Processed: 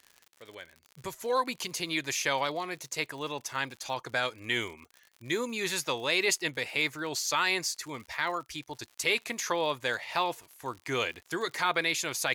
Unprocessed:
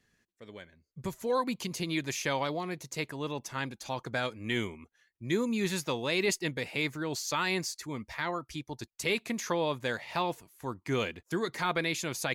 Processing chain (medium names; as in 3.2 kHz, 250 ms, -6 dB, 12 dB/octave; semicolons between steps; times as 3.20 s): peaking EQ 200 Hz -8.5 dB 0.41 oct; crackle 83 per s -44 dBFS; bass shelf 420 Hz -10.5 dB; trim +4.5 dB